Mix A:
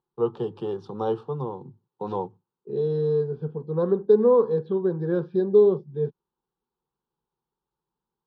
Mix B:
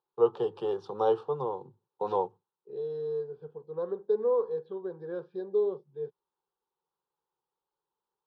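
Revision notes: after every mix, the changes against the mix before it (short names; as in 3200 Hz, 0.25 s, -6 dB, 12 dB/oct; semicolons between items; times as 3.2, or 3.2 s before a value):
second voice -10.0 dB; master: add resonant low shelf 350 Hz -9.5 dB, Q 1.5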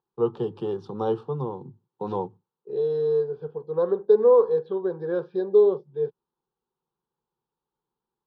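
first voice: add resonant low shelf 360 Hz +10.5 dB, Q 1.5; second voice +10.0 dB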